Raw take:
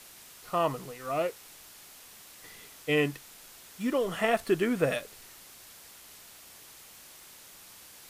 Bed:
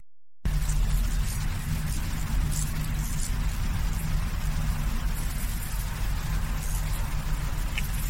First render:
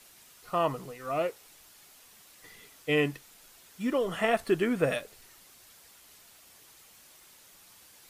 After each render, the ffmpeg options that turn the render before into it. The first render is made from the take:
ffmpeg -i in.wav -af "afftdn=noise_reduction=6:noise_floor=-52" out.wav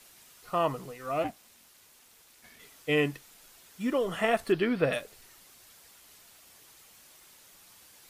ffmpeg -i in.wav -filter_complex "[0:a]asplit=3[link_01][link_02][link_03];[link_01]afade=type=out:start_time=1.23:duration=0.02[link_04];[link_02]aeval=exprs='val(0)*sin(2*PI*240*n/s)':channel_layout=same,afade=type=in:start_time=1.23:duration=0.02,afade=type=out:start_time=2.58:duration=0.02[link_05];[link_03]afade=type=in:start_time=2.58:duration=0.02[link_06];[link_04][link_05][link_06]amix=inputs=3:normalize=0,asettb=1/sr,asplit=3[link_07][link_08][link_09];[link_07]atrim=end=4.524[link_10];[link_08]atrim=start=4.52:end=4.93,asetpts=PTS-STARTPTS,afade=type=in:duration=0.004:curve=qsin,afade=type=out:start_time=0.406:duration=0.004:curve=qsin,highshelf=frequency=5600:width_type=q:width=3:gain=-7.5[link_11];[link_09]atrim=start=4.926[link_12];[link_10][link_11]acrossfade=duration=0.004:curve1=hsin:curve2=qsin[link_13];[link_13][link_12]acrossfade=duration=0.004:curve1=qsin:curve2=hsin" out.wav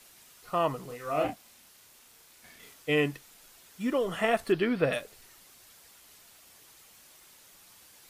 ffmpeg -i in.wav -filter_complex "[0:a]asettb=1/sr,asplit=3[link_01][link_02][link_03];[link_01]atrim=end=0.864[link_04];[link_02]atrim=start=0.86:end=2.74,asetpts=PTS-STARTPTS,afade=type=in:duration=0.004:curve=qsin,afade=type=out:start_time=1.876:duration=0.004:curve=qsin,asplit=2[link_05][link_06];[link_06]adelay=33,volume=-3.5dB[link_07];[link_05][link_07]amix=inputs=2:normalize=0,atrim=end_sample=82908[link_08];[link_03]atrim=start=2.736[link_09];[link_04][link_08]acrossfade=duration=0.004:curve1=hsin:curve2=qsin[link_10];[link_10][link_09]acrossfade=duration=0.004:curve1=qsin:curve2=hsin" out.wav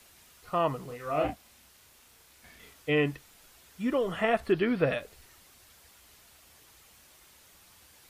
ffmpeg -i in.wav -filter_complex "[0:a]acrossover=split=3800[link_01][link_02];[link_02]acompressor=threshold=-55dB:ratio=4:attack=1:release=60[link_03];[link_01][link_03]amix=inputs=2:normalize=0,equalizer=frequency=64:width=1.4:gain=12" out.wav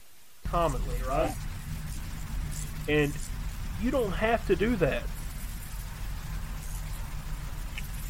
ffmpeg -i in.wav -i bed.wav -filter_complex "[1:a]volume=-7.5dB[link_01];[0:a][link_01]amix=inputs=2:normalize=0" out.wav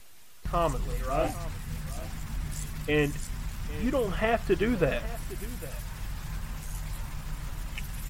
ffmpeg -i in.wav -af "aecho=1:1:806:0.133" out.wav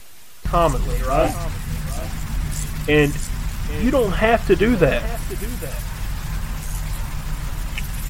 ffmpeg -i in.wav -af "volume=10dB" out.wav

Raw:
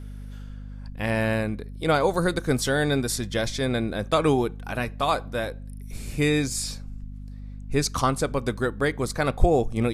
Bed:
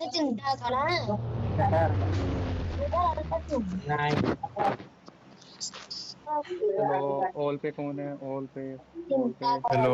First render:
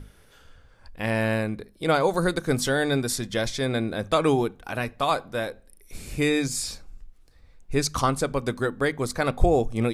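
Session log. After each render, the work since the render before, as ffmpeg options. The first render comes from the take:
ffmpeg -i in.wav -af "bandreject=frequency=50:width_type=h:width=6,bandreject=frequency=100:width_type=h:width=6,bandreject=frequency=150:width_type=h:width=6,bandreject=frequency=200:width_type=h:width=6,bandreject=frequency=250:width_type=h:width=6" out.wav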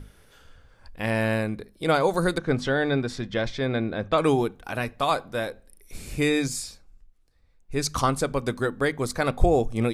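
ffmpeg -i in.wav -filter_complex "[0:a]asettb=1/sr,asplit=3[link_01][link_02][link_03];[link_01]atrim=end=2.384[link_04];[link_02]atrim=start=2.38:end=4.18,asetpts=PTS-STARTPTS,afade=type=in:duration=0.004:curve=qsin,afade=type=out:start_time=1.796:duration=0.004:curve=qsin,lowpass=3300[link_05];[link_03]atrim=start=4.176[link_06];[link_04][link_05]acrossfade=duration=0.004:curve1=hsin:curve2=qsin[link_07];[link_07][link_06]acrossfade=duration=0.004:curve1=qsin:curve2=hsin,asplit=3[link_08][link_09][link_10];[link_08]atrim=end=6.72,asetpts=PTS-STARTPTS,afade=type=out:start_time=6.48:duration=0.24:silence=0.334965[link_11];[link_09]atrim=start=6.72:end=7.65,asetpts=PTS-STARTPTS,volume=-9.5dB[link_12];[link_10]atrim=start=7.65,asetpts=PTS-STARTPTS,afade=type=in:duration=0.24:silence=0.334965[link_13];[link_11][link_12][link_13]concat=n=3:v=0:a=1" out.wav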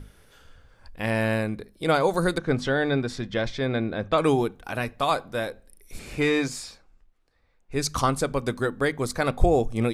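ffmpeg -i in.wav -filter_complex "[0:a]asettb=1/sr,asplit=3[link_01][link_02][link_03];[link_01]atrim=end=5.994[link_04];[link_02]atrim=start=5.99:end=7.75,asetpts=PTS-STARTPTS,afade=type=in:duration=0.004:curve=qsin,afade=type=out:start_time=1.756:duration=0.004:curve=qsin,asplit=2[link_05][link_06];[link_06]highpass=frequency=720:poles=1,volume=13dB,asoftclip=type=tanh:threshold=-11.5dB[link_07];[link_05][link_07]amix=inputs=2:normalize=0,lowpass=frequency=1700:poles=1,volume=-6dB[link_08];[link_03]atrim=start=7.746[link_09];[link_04][link_08]acrossfade=duration=0.004:curve1=hsin:curve2=qsin[link_10];[link_10][link_09]acrossfade=duration=0.004:curve1=qsin:curve2=hsin" out.wav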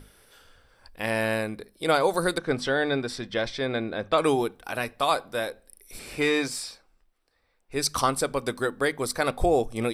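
ffmpeg -i in.wav -af "bass=frequency=250:gain=-8,treble=frequency=4000:gain=5,bandreject=frequency=6700:width=5.2" out.wav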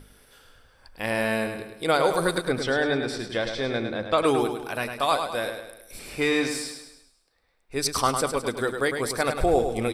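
ffmpeg -i in.wav -af "aecho=1:1:104|208|312|416|520|624:0.447|0.21|0.0987|0.0464|0.0218|0.0102" out.wav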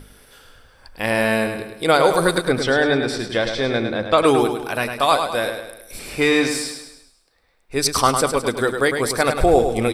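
ffmpeg -i in.wav -af "volume=6.5dB" out.wav

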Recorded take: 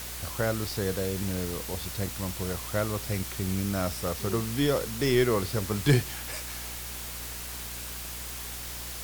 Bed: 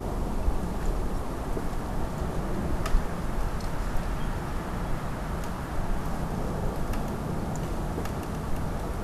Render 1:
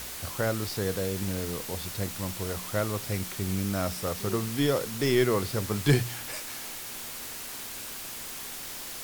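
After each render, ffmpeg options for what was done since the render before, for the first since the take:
ffmpeg -i in.wav -af "bandreject=frequency=60:width_type=h:width=4,bandreject=frequency=120:width_type=h:width=4,bandreject=frequency=180:width_type=h:width=4" out.wav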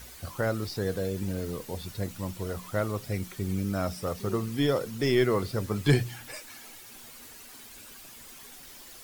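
ffmpeg -i in.wav -af "afftdn=noise_reduction=11:noise_floor=-39" out.wav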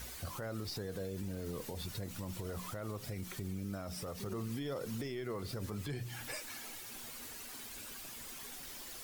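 ffmpeg -i in.wav -af "acompressor=threshold=-31dB:ratio=6,alimiter=level_in=7.5dB:limit=-24dB:level=0:latency=1:release=65,volume=-7.5dB" out.wav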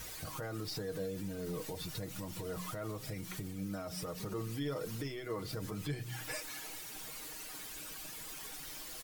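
ffmpeg -i in.wav -af "aecho=1:1:6.4:0.65,bandreject=frequency=62.36:width_type=h:width=4,bandreject=frequency=124.72:width_type=h:width=4,bandreject=frequency=187.08:width_type=h:width=4,bandreject=frequency=249.44:width_type=h:width=4" out.wav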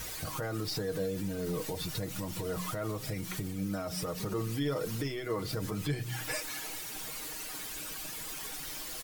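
ffmpeg -i in.wav -af "volume=5.5dB" out.wav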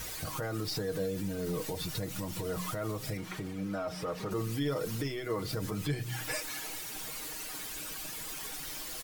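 ffmpeg -i in.wav -filter_complex "[0:a]asettb=1/sr,asplit=3[link_01][link_02][link_03];[link_01]atrim=end=3.174[link_04];[link_02]atrim=start=3.17:end=4.31,asetpts=PTS-STARTPTS,afade=type=in:duration=0.004:curve=qsin,afade=type=out:start_time=1.136:duration=0.004:curve=qsin,asplit=2[link_05][link_06];[link_06]highpass=frequency=720:poles=1,volume=13dB,asoftclip=type=tanh:threshold=-24dB[link_07];[link_05][link_07]amix=inputs=2:normalize=0,lowpass=frequency=1300:poles=1,volume=-6dB[link_08];[link_03]atrim=start=4.306[link_09];[link_04][link_08]acrossfade=duration=0.004:curve1=hsin:curve2=qsin[link_10];[link_10][link_09]acrossfade=duration=0.004:curve1=qsin:curve2=hsin" out.wav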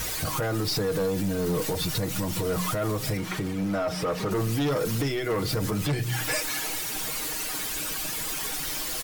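ffmpeg -i in.wav -af "aeval=exprs='0.0841*sin(PI/2*2*val(0)/0.0841)':channel_layout=same" out.wav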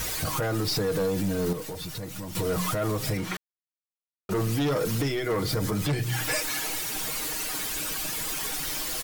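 ffmpeg -i in.wav -filter_complex "[0:a]asettb=1/sr,asplit=3[link_01][link_02][link_03];[link_01]atrim=end=5.154[link_04];[link_02]atrim=start=5.15:end=5.86,asetpts=PTS-STARTPTS,afade=type=in:duration=0.004:curve=qsin,afade=type=out:start_time=0.706:duration=0.004:curve=qsin,bandreject=frequency=2700:width=12[link_05];[link_03]atrim=start=5.856[link_06];[link_04][link_05]acrossfade=duration=0.004:curve1=hsin:curve2=qsin[link_07];[link_07][link_06]acrossfade=duration=0.004:curve1=qsin:curve2=hsin,asplit=5[link_08][link_09][link_10][link_11][link_12];[link_08]atrim=end=1.532[link_13];[link_09]atrim=start=1.528:end=2.352,asetpts=PTS-STARTPTS,volume=-8dB[link_14];[link_10]atrim=start=2.348:end=3.37,asetpts=PTS-STARTPTS,afade=type=out:start_time=1.018:duration=0.004:curve=hsin[link_15];[link_11]atrim=start=3.37:end=4.29,asetpts=PTS-STARTPTS,volume=0[link_16];[link_12]atrim=start=4.29,asetpts=PTS-STARTPTS,afade=type=in:duration=0.004:curve=hsin[link_17];[link_13][link_14]acrossfade=duration=0.004:curve1=hsin:curve2=hsin[link_18];[link_15][link_16][link_17]concat=n=3:v=0:a=1[link_19];[link_18][link_19]acrossfade=duration=0.004:curve1=hsin:curve2=hsin" out.wav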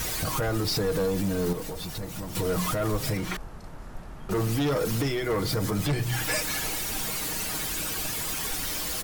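ffmpeg -i in.wav -i bed.wav -filter_complex "[1:a]volume=-11.5dB[link_01];[0:a][link_01]amix=inputs=2:normalize=0" out.wav

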